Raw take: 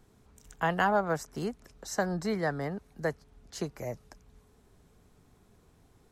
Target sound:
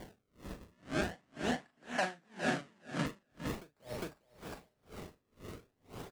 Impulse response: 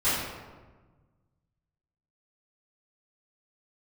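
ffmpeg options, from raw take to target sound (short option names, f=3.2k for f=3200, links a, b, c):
-filter_complex "[0:a]bass=f=250:g=4,treble=f=4k:g=15,acompressor=threshold=-40dB:ratio=6,asplit=2[a][b];[b]highpass=f=720:p=1,volume=36dB,asoftclip=type=tanh:threshold=-17dB[c];[a][c]amix=inputs=2:normalize=0,lowpass=f=1.5k:p=1,volume=-6dB,acrusher=samples=33:mix=1:aa=0.000001:lfo=1:lforange=52.8:lforate=0.43,asettb=1/sr,asplit=3[d][e][f];[d]atrim=end=0.724[g];[e]atrim=start=0.72:end=3.06,asetpts=PTS-STARTPTS,afade=t=in:d=0.004:c=qsin,afade=t=out:st=2.336:d=0.004:c=qsin,highpass=150,equalizer=f=240:t=q:w=4:g=5,equalizer=f=440:t=q:w=4:g=-6,equalizer=f=710:t=q:w=4:g=6,equalizer=f=1.7k:t=q:w=4:g=9,equalizer=f=2.9k:t=q:w=4:g=4,lowpass=f=8.8k:w=0.5412,lowpass=f=8.8k:w=1.3066[h];[f]atrim=start=3.056[i];[g][h]acrossfade=d=0.004:c1=hsin:c2=qsin[j];[j][i]acrossfade=d=0.004:c1=qsin:c2=hsin,asplit=2[k][l];[l]adelay=41,volume=-5.5dB[m];[k][m]amix=inputs=2:normalize=0,aecho=1:1:406|812|1218|1624:0.668|0.221|0.0728|0.024,aeval=exprs='val(0)*pow(10,-36*(0.5-0.5*cos(2*PI*2*n/s))/20)':c=same,volume=-6.5dB"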